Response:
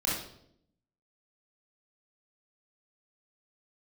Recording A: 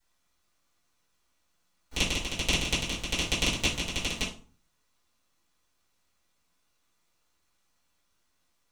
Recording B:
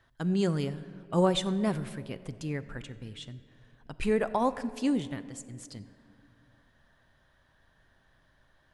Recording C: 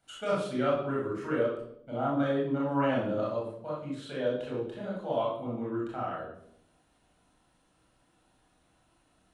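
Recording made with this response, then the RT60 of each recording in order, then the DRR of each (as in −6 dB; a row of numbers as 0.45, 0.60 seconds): C; 0.40, 2.7, 0.70 seconds; −11.0, 12.5, −5.5 decibels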